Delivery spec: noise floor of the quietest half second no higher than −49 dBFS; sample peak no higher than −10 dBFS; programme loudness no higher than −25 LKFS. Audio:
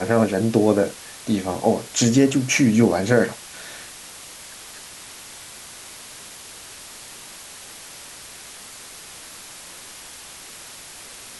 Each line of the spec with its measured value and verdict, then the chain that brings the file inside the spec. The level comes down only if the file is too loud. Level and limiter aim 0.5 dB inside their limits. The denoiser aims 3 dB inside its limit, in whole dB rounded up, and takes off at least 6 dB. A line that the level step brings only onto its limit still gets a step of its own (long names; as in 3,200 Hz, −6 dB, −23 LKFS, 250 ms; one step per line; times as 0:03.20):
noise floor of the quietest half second −40 dBFS: out of spec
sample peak −4.5 dBFS: out of spec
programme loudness −19.5 LKFS: out of spec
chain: broadband denoise 6 dB, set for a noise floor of −40 dBFS
level −6 dB